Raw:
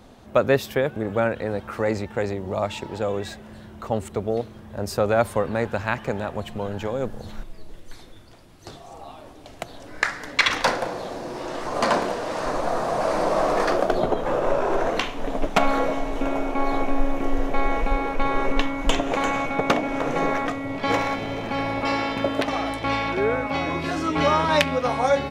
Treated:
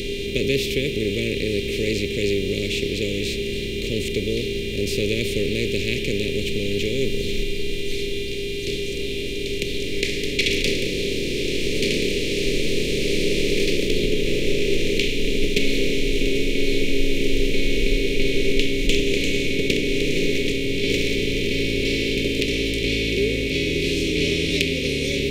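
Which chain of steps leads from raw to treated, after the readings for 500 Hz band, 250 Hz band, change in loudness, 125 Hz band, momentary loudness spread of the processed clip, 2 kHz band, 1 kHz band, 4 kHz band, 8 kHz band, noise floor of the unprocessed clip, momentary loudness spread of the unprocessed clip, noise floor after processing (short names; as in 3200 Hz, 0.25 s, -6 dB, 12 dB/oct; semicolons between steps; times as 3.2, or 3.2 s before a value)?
+1.0 dB, +3.5 dB, +1.5 dB, +4.5 dB, 5 LU, +2.5 dB, under -35 dB, +9.0 dB, +7.5 dB, -44 dBFS, 11 LU, -27 dBFS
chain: per-bin compression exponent 0.4; buzz 400 Hz, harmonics 10, -26 dBFS -4 dB/oct; elliptic band-stop 420–2400 Hz, stop band 40 dB; gain -2 dB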